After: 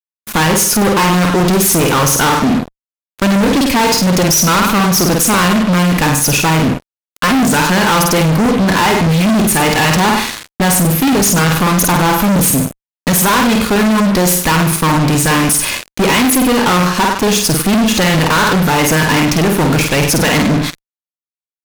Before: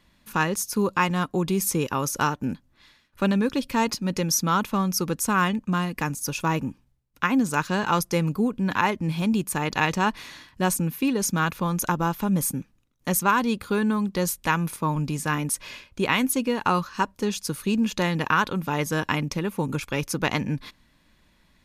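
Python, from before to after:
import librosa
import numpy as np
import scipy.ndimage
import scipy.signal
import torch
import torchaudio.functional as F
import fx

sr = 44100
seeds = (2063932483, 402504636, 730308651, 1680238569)

y = fx.room_flutter(x, sr, wall_m=8.6, rt60_s=0.45)
y = fx.fuzz(y, sr, gain_db=37.0, gate_db=-40.0)
y = F.gain(torch.from_numpy(y), 3.5).numpy()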